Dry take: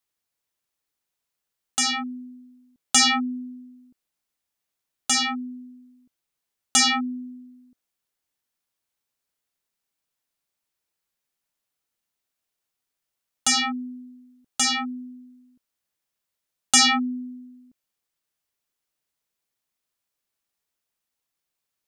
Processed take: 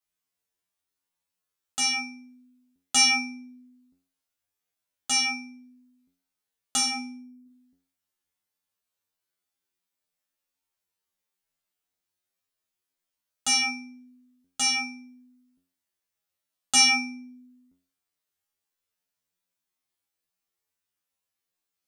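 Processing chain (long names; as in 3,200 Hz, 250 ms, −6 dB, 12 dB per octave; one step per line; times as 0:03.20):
0:06.76–0:07.46: parametric band 2,600 Hz −10.5 dB 2.1 octaves
tuned comb filter 90 Hz, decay 0.41 s, harmonics all, mix 100%
level +7.5 dB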